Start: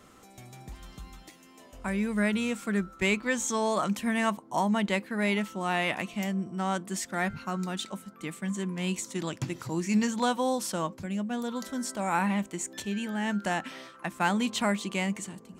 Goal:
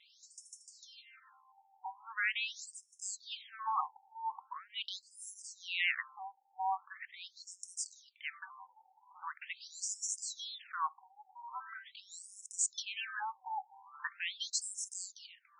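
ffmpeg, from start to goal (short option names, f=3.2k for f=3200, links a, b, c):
-filter_complex "[0:a]afftfilt=real='re*(1-between(b*sr/4096,210,750))':imag='im*(1-between(b*sr/4096,210,750))':win_size=4096:overlap=0.75,crystalizer=i=2:c=0,asplit=2[a][b];[b]alimiter=limit=-21dB:level=0:latency=1:release=41,volume=-3dB[c];[a][c]amix=inputs=2:normalize=0,highshelf=f=6.7k:g=-6,afftfilt=real='re*between(b*sr/1024,630*pow(7400/630,0.5+0.5*sin(2*PI*0.42*pts/sr))/1.41,630*pow(7400/630,0.5+0.5*sin(2*PI*0.42*pts/sr))*1.41)':imag='im*between(b*sr/1024,630*pow(7400/630,0.5+0.5*sin(2*PI*0.42*pts/sr))/1.41,630*pow(7400/630,0.5+0.5*sin(2*PI*0.42*pts/sr))*1.41)':win_size=1024:overlap=0.75,volume=-4.5dB"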